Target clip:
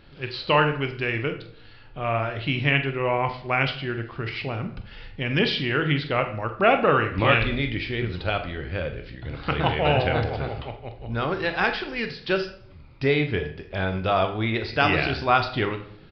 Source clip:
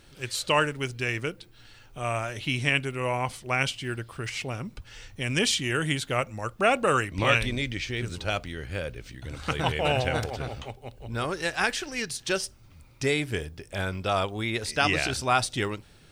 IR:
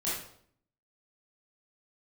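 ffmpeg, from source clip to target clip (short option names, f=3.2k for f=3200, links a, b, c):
-filter_complex "[0:a]highshelf=f=4.1k:g=-8.5,asplit=2[a][b];[b]adelay=45,volume=-13dB[c];[a][c]amix=inputs=2:normalize=0,asplit=2[d][e];[1:a]atrim=start_sample=2205,lowpass=5.7k[f];[e][f]afir=irnorm=-1:irlink=0,volume=-12dB[g];[d][g]amix=inputs=2:normalize=0,aresample=11025,aresample=44100,volume=2.5dB"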